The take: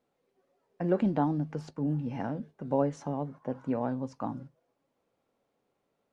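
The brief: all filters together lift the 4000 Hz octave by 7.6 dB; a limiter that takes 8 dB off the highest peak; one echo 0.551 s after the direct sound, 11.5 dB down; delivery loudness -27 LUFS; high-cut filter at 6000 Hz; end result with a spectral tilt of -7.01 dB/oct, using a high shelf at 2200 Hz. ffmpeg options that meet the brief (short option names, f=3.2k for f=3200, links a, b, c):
-af "lowpass=6k,highshelf=f=2.2k:g=6,equalizer=f=4k:t=o:g=5.5,alimiter=limit=-21.5dB:level=0:latency=1,aecho=1:1:551:0.266,volume=6.5dB"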